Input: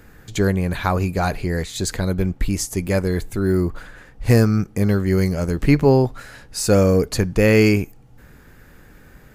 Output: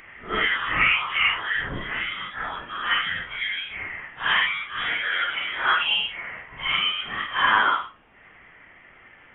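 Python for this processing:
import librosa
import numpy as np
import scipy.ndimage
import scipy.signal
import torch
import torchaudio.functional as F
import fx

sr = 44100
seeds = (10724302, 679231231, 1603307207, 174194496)

y = fx.phase_scramble(x, sr, seeds[0], window_ms=200)
y = scipy.signal.sosfilt(scipy.signal.butter(2, 1400.0, 'highpass', fs=sr, output='sos'), y)
y = fx.rider(y, sr, range_db=3, speed_s=2.0)
y = fx.dmg_noise_colour(y, sr, seeds[1], colour='violet', level_db=-44.0)
y = fx.freq_invert(y, sr, carrier_hz=3600)
y = y * librosa.db_to_amplitude(9.0)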